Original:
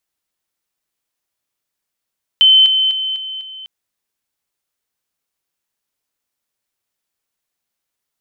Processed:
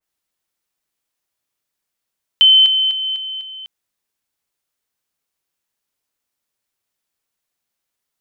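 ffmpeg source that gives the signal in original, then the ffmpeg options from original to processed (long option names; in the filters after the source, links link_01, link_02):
-f lavfi -i "aevalsrc='pow(10,(-5.5-6*floor(t/0.25))/20)*sin(2*PI*3070*t)':duration=1.25:sample_rate=44100"
-af "adynamicequalizer=threshold=0.1:dfrequency=2200:dqfactor=0.7:tfrequency=2200:tqfactor=0.7:attack=5:release=100:ratio=0.375:range=1.5:mode=cutabove:tftype=highshelf"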